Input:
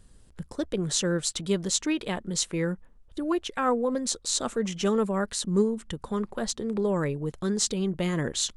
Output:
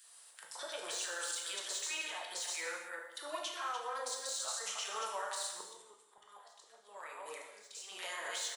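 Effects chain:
delay that plays each chunk backwards 164 ms, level −8 dB
de-essing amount 65%
high-pass filter 780 Hz 24 dB per octave
high-shelf EQ 9,400 Hz +8.5 dB
downward compressor 6 to 1, threshold −38 dBFS, peak gain reduction 14.5 dB
0:05.49–0:07.88: volume swells 756 ms
brickwall limiter −34 dBFS, peak gain reduction 10.5 dB
multiband delay without the direct sound highs, lows 40 ms, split 1,500 Hz
reverb whose tail is shaped and stops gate 350 ms falling, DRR 0 dB
level +3.5 dB

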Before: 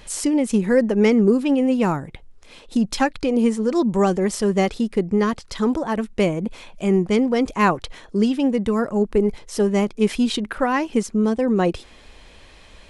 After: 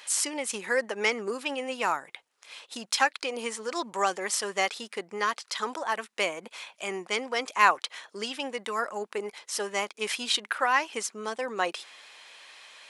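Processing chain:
high-pass filter 1,000 Hz 12 dB per octave
level +1.5 dB

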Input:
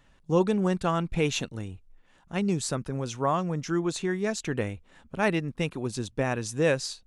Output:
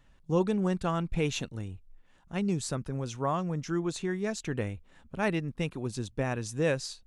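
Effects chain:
low-shelf EQ 140 Hz +6 dB
level −4.5 dB

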